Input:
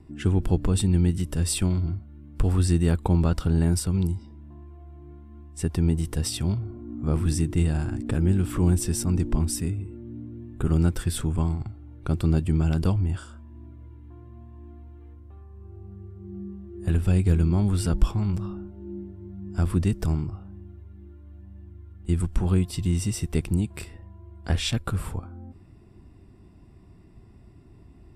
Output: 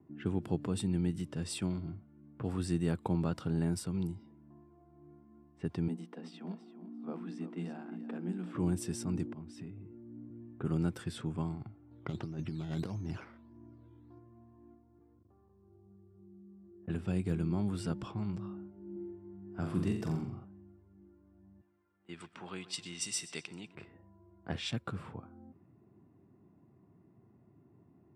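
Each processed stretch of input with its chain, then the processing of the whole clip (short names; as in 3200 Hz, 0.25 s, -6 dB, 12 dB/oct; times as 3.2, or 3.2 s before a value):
5.88–8.55 rippled Chebyshev high-pass 170 Hz, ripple 6 dB + notch 580 Hz, Q 9.6 + feedback echo 0.341 s, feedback 18%, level -12 dB
9.26–10.3 compressor 10:1, threshold -29 dBFS + three-band expander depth 40%
11.91–14.19 negative-ratio compressor -24 dBFS, ratio -0.5 + decimation with a swept rate 10×, swing 60% 1.6 Hz
14.74–16.9 air absorption 310 m + level quantiser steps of 23 dB
18.92–20.45 bell 8500 Hz -3 dB 0.22 oct + flutter echo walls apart 7.4 m, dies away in 0.58 s
21.61–23.75 weighting filter ITU-R 468 + feedback echo 0.127 s, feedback 54%, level -16.5 dB
whole clip: HPF 120 Hz 24 dB/oct; low-pass opened by the level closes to 1300 Hz, open at -22 dBFS; high shelf 5600 Hz -7 dB; gain -8 dB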